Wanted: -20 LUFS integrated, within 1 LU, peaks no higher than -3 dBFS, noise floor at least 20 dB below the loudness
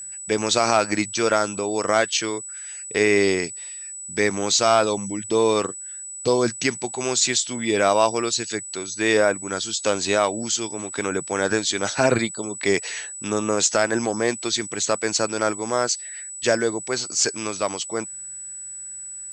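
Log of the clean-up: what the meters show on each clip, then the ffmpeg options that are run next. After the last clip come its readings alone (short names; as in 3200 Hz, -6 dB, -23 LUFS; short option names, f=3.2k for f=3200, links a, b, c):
steady tone 7900 Hz; tone level -33 dBFS; loudness -22.0 LUFS; peak -3.5 dBFS; loudness target -20.0 LUFS
-> -af "bandreject=f=7.9k:w=30"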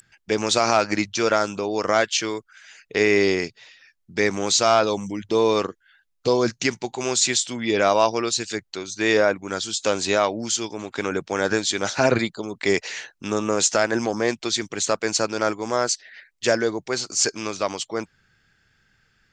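steady tone none; loudness -22.5 LUFS; peak -3.5 dBFS; loudness target -20.0 LUFS
-> -af "volume=2.5dB,alimiter=limit=-3dB:level=0:latency=1"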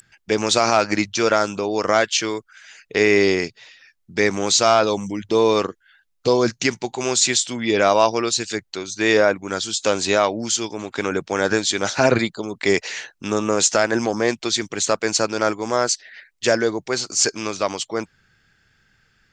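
loudness -20.0 LUFS; peak -3.0 dBFS; noise floor -68 dBFS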